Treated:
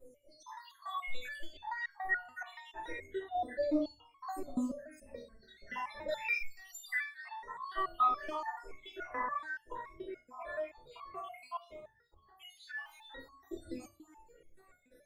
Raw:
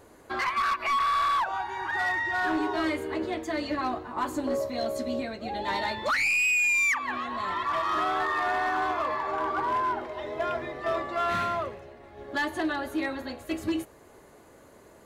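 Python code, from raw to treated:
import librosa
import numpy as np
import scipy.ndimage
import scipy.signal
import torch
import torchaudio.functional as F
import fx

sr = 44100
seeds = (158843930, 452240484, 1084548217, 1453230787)

y = fx.spec_dropout(x, sr, seeds[0], share_pct=83)
y = fx.dmg_crackle(y, sr, seeds[1], per_s=180.0, level_db=-51.0, at=(12.65, 13.06), fade=0.02)
y = fx.room_shoebox(y, sr, seeds[2], volume_m3=33.0, walls='mixed', distance_m=2.1)
y = fx.resonator_held(y, sr, hz=7.0, low_hz=250.0, high_hz=1100.0)
y = F.gain(torch.from_numpy(y), 1.0).numpy()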